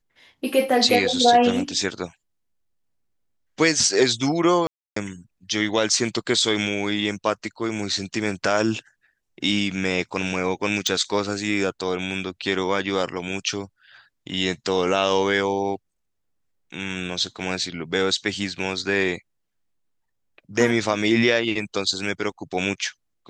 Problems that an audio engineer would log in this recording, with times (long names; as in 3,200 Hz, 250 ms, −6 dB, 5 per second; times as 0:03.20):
0:04.67–0:04.96: drop-out 294 ms
0:10.87: click −10 dBFS